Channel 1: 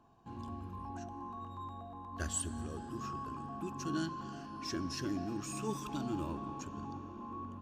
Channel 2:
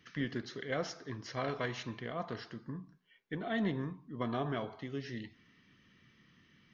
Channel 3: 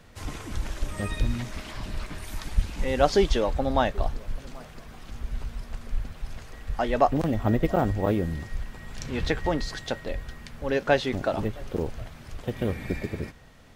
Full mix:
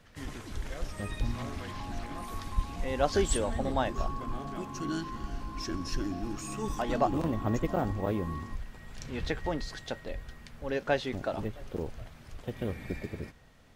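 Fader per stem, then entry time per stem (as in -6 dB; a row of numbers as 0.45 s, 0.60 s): +2.0 dB, -9.0 dB, -6.5 dB; 0.95 s, 0.00 s, 0.00 s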